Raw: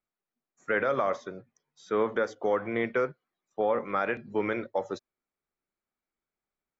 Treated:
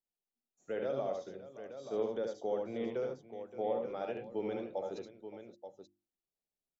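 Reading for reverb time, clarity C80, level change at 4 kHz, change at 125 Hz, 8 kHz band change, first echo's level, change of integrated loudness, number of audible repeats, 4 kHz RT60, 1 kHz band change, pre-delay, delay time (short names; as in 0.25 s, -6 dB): none, none, -7.0 dB, -8.0 dB, n/a, -4.0 dB, -9.0 dB, 3, none, -12.0 dB, none, 73 ms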